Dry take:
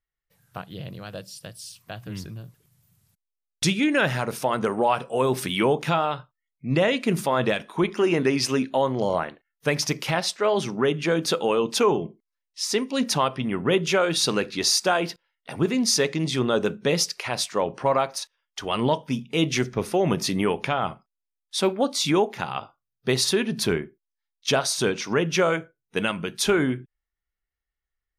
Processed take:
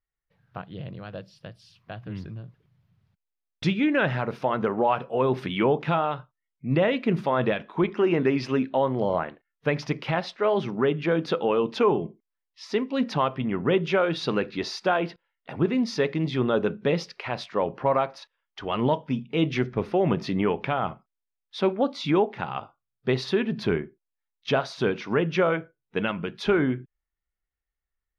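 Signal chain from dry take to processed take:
high-frequency loss of the air 310 metres

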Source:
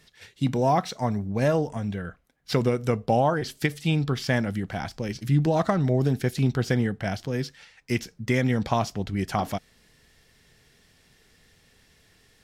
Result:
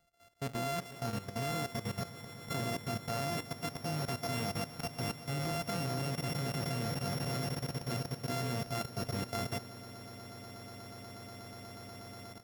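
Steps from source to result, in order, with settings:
samples sorted by size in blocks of 64 samples
echo that builds up and dies away 121 ms, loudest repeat 8, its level −12 dB
output level in coarse steps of 13 dB
level −9 dB

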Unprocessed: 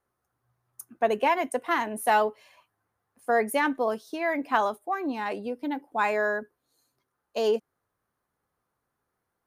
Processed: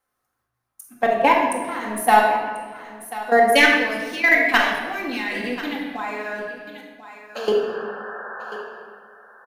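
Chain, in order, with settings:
0:03.52–0:05.92: high shelf with overshoot 1,600 Hz +10.5 dB, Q 1.5
leveller curve on the samples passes 1
output level in coarse steps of 18 dB
0:07.35–0:08.62: sound drawn into the spectrogram noise 370–1,800 Hz −45 dBFS
single-tap delay 1,039 ms −17.5 dB
rectangular room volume 1,100 cubic metres, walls mixed, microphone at 2.1 metres
one half of a high-frequency compander encoder only
level +3.5 dB

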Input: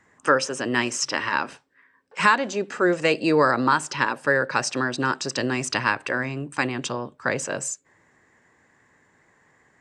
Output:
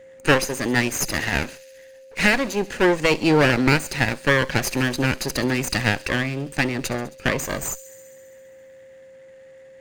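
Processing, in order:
lower of the sound and its delayed copy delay 0.46 ms
delay with a high-pass on its return 67 ms, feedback 79%, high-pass 4,500 Hz, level −16 dB
steady tone 530 Hz −47 dBFS
level +3.5 dB

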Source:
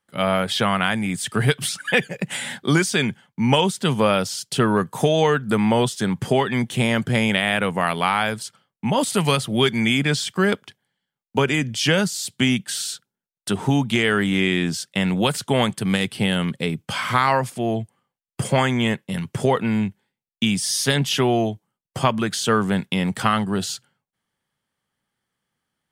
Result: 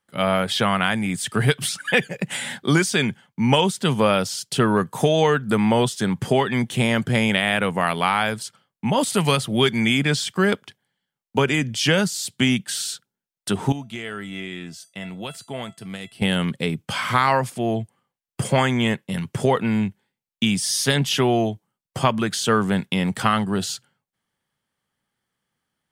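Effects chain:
0:13.72–0:16.22: tuned comb filter 670 Hz, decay 0.25 s, harmonics all, mix 80%

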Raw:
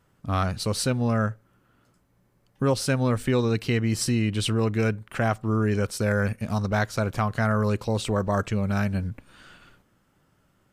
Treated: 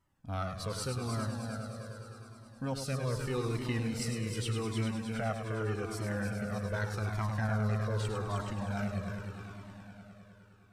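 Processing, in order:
echo machine with several playback heads 103 ms, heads first and third, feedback 71%, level −7.5 dB
flanger whose copies keep moving one way falling 0.83 Hz
level −7.5 dB

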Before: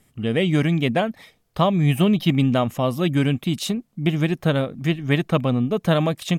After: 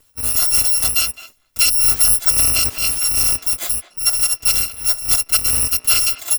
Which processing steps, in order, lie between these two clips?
samples in bit-reversed order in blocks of 256 samples
far-end echo of a speakerphone 210 ms, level −14 dB
0:02.50–0:03.27: transient designer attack −5 dB, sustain +5 dB
level +3.5 dB

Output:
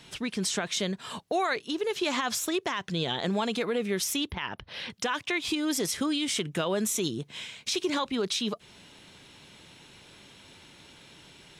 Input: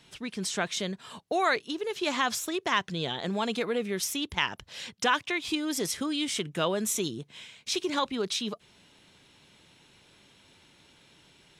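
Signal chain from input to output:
in parallel at +1 dB: downward compressor, threshold −38 dBFS, peak gain reduction 17 dB
on the sum: brickwall limiter −19 dBFS, peak gain reduction 10 dB
0:04.31–0:04.90: moving average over 6 samples

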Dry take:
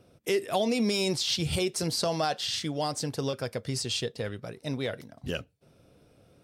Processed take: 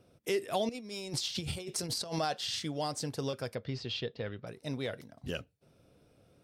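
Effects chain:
0:00.69–0:02.19: compressor whose output falls as the input rises −32 dBFS, ratio −0.5
0:03.55–0:04.47: low-pass filter 4,200 Hz 24 dB per octave
level −4.5 dB

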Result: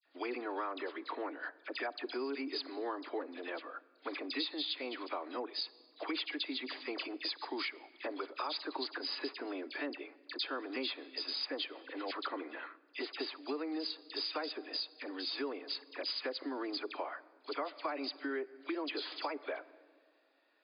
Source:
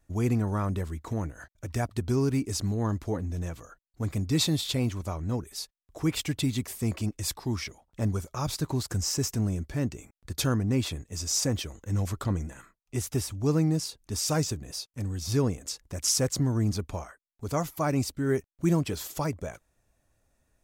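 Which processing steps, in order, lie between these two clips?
in parallel at −1 dB: brickwall limiter −25 dBFS, peak gain reduction 11.5 dB
on the sum: linear-phase brick-wall band-pass 260–5,000 Hz
tilt shelving filter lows −5 dB, about 660 Hz
all-pass dispersion lows, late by 60 ms, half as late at 2,100 Hz
on a send at −21 dB: convolution reverb RT60 1.6 s, pre-delay 21 ms
on the sum: downward compressor 6 to 1, threshold −32 dBFS, peak gain reduction 14.5 dB
level −3 dB

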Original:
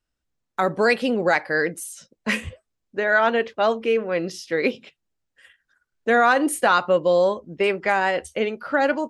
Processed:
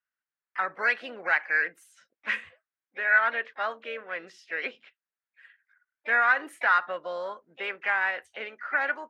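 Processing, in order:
resonant band-pass 1,600 Hz, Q 2.5
pitch-shifted copies added +3 semitones −18 dB, +5 semitones −13 dB

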